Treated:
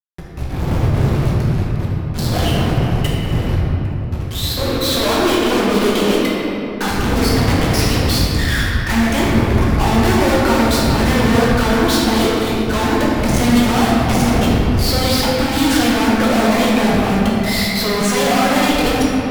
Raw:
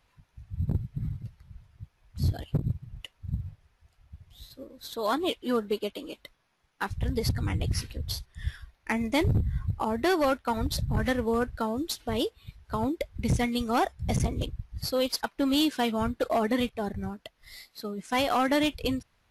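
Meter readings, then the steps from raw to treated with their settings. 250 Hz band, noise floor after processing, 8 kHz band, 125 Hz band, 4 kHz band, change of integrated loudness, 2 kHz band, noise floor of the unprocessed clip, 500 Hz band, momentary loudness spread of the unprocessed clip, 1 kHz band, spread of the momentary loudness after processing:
+15.0 dB, -23 dBFS, +17.0 dB, +14.5 dB, +15.0 dB, +13.5 dB, +16.0 dB, -70 dBFS, +13.0 dB, 16 LU, +13.0 dB, 6 LU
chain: low shelf 150 Hz -7.5 dB; fuzz box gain 57 dB, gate -56 dBFS; shoebox room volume 210 m³, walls hard, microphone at 1 m; gain -8 dB

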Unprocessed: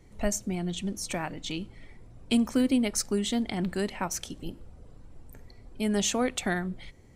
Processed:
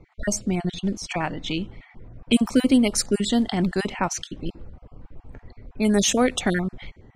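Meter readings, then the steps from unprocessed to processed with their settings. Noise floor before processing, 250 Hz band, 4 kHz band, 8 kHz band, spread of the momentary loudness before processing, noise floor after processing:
-52 dBFS, +6.5 dB, +6.0 dB, +5.0 dB, 14 LU, -60 dBFS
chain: random spectral dropouts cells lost 23%; low-pass opened by the level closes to 2000 Hz, open at -23.5 dBFS; gain +7.5 dB

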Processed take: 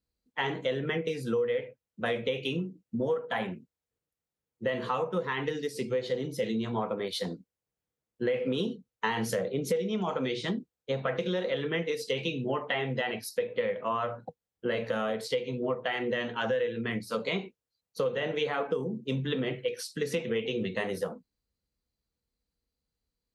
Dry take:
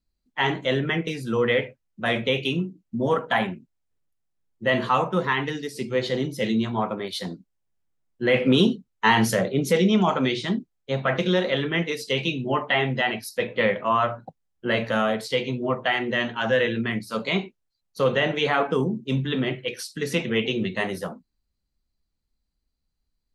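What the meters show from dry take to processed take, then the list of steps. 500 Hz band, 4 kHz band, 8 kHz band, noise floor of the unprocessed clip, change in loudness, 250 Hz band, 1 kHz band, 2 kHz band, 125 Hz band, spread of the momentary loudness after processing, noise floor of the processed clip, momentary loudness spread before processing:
-5.0 dB, -9.0 dB, -6.5 dB, -78 dBFS, -7.5 dB, -9.0 dB, -9.5 dB, -9.5 dB, -9.0 dB, 6 LU, under -85 dBFS, 10 LU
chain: HPF 54 Hz; bell 480 Hz +12 dB 0.22 oct; compressor 6:1, threshold -24 dBFS, peak gain reduction 16 dB; gain -3 dB

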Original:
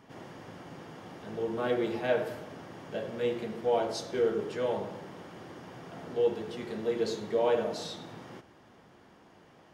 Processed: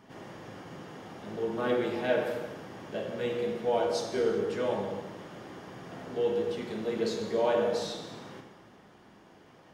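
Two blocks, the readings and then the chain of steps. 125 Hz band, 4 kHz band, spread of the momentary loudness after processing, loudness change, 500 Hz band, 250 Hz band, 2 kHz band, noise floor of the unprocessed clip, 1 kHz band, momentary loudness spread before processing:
+1.0 dB, +1.5 dB, 17 LU, +1.0 dB, +1.0 dB, +1.5 dB, +2.0 dB, -58 dBFS, +1.0 dB, 17 LU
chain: non-linear reverb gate 0.42 s falling, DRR 3.5 dB

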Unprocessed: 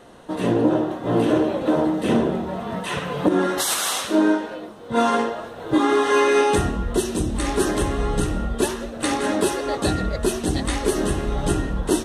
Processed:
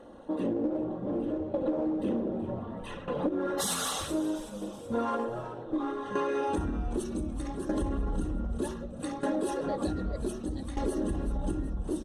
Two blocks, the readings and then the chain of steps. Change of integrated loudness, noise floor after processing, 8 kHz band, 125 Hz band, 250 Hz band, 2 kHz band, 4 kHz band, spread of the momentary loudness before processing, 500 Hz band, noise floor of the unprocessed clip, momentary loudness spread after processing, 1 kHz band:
-11.0 dB, -42 dBFS, -11.5 dB, -10.0 dB, -9.5 dB, -16.5 dB, -13.0 dB, 8 LU, -11.5 dB, -37 dBFS, 6 LU, -12.5 dB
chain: formant sharpening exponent 1.5; bell 2100 Hz -3.5 dB 1 oct; comb 3.6 ms, depth 48%; in parallel at -7 dB: one-sided clip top -20.5 dBFS; on the sum: tremolo saw down 0.65 Hz, depth 80%; on a send: frequency-shifting echo 0.376 s, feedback 47%, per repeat -110 Hz, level -15.5 dB; on the sum: compressor 6:1, threshold -20 dBFS, peak gain reduction 10.5 dB; gain -6.5 dB

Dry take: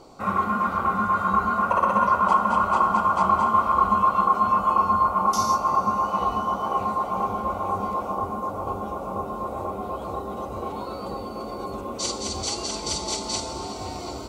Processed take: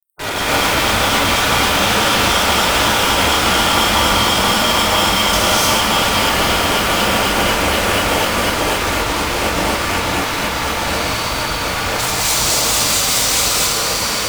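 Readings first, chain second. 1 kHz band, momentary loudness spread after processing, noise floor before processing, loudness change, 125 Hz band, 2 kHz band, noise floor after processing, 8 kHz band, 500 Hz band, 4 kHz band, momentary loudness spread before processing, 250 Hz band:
+3.0 dB, 5 LU, -34 dBFS, +9.5 dB, +12.0 dB, +18.0 dB, -20 dBFS, +18.0 dB, +11.0 dB, +21.5 dB, 13 LU, +9.5 dB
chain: fuzz box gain 36 dB, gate -39 dBFS; requantised 6-bit, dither none; spectral gate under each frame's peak -10 dB weak; non-linear reverb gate 0.32 s rising, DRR -6 dB; gain -1.5 dB

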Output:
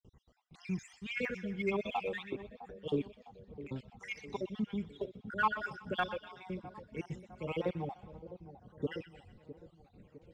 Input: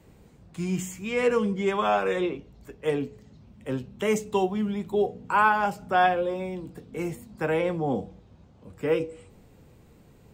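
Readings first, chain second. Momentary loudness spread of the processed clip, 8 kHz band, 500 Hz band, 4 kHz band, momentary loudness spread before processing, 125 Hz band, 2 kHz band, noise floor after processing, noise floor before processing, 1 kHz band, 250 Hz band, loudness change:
19 LU, under -15 dB, -13.5 dB, -8.0 dB, 13 LU, -8.5 dB, -9.5 dB, -68 dBFS, -55 dBFS, -13.5 dB, -10.0 dB, -12.0 dB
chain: random spectral dropouts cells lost 58%; gate with hold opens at -56 dBFS; ladder low-pass 6700 Hz, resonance 20%; bell 2300 Hz +2.5 dB; phaser 1.7 Hz, delay 1.7 ms, feedback 59%; soft clip -13.5 dBFS, distortion -27 dB; split-band echo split 970 Hz, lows 0.657 s, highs 0.124 s, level -14 dB; gain -4 dB

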